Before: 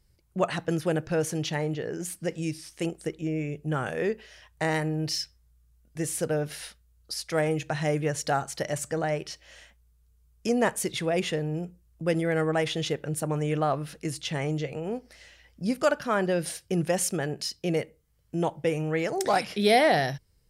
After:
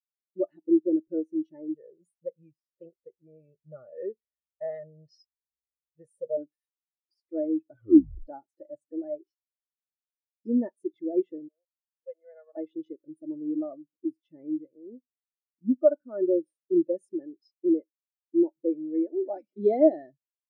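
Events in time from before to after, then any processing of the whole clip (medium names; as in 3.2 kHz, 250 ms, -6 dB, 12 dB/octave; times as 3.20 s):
1.74–6.37 s: comb 1.6 ms, depth 84%
7.68 s: tape stop 0.59 s
11.48–12.57 s: steep high-pass 540 Hz
whole clip: peaking EQ 350 Hz +10.5 dB 1.1 oct; comb 3.4 ms, depth 44%; spectral contrast expander 2.5:1; trim -1.5 dB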